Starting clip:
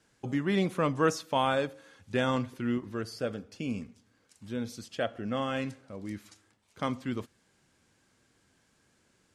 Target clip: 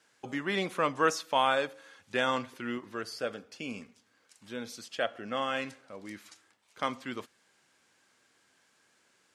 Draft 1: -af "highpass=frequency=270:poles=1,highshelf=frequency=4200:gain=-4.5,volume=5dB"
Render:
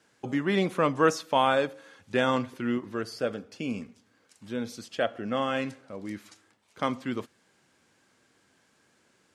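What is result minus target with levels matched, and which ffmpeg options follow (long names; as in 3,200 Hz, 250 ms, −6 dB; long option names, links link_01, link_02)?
250 Hz band +4.5 dB
-af "highpass=frequency=910:poles=1,highshelf=frequency=4200:gain=-4.5,volume=5dB"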